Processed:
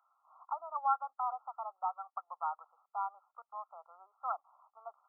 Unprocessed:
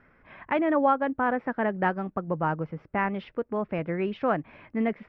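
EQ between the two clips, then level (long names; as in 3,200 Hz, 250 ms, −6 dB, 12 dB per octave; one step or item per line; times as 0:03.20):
Chebyshev high-pass filter 750 Hz, order 5
linear-phase brick-wall low-pass 1,400 Hz
spectral tilt +2 dB per octave
−6.0 dB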